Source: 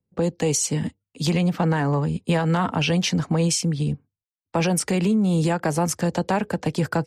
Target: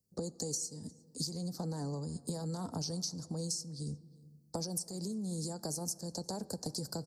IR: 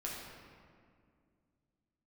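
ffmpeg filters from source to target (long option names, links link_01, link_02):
-filter_complex "[0:a]firequalizer=gain_entry='entry(440,0);entry(2700,-29);entry(4400,15)':delay=0.05:min_phase=1,acompressor=threshold=-31dB:ratio=16,asplit=2[link_01][link_02];[link_02]adelay=355.7,volume=-23dB,highshelf=frequency=4000:gain=-8[link_03];[link_01][link_03]amix=inputs=2:normalize=0,asplit=2[link_04][link_05];[1:a]atrim=start_sample=2205[link_06];[link_05][link_06]afir=irnorm=-1:irlink=0,volume=-17dB[link_07];[link_04][link_07]amix=inputs=2:normalize=0,volume=-5dB"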